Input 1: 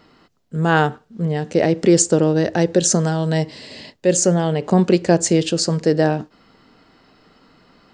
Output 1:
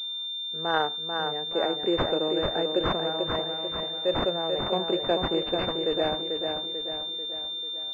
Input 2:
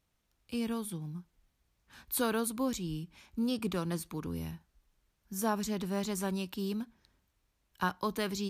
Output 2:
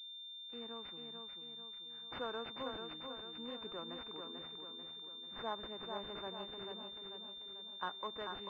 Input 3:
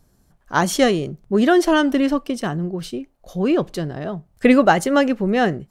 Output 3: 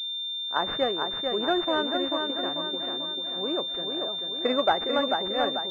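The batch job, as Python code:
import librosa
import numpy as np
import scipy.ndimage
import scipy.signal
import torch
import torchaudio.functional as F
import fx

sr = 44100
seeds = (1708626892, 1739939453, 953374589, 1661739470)

p1 = scipy.signal.sosfilt(scipy.signal.butter(2, 460.0, 'highpass', fs=sr, output='sos'), x)
p2 = p1 + fx.echo_feedback(p1, sr, ms=441, feedback_pct=51, wet_db=-5, dry=0)
p3 = fx.pwm(p2, sr, carrier_hz=3600.0)
y = F.gain(torch.from_numpy(p3), -7.0).numpy()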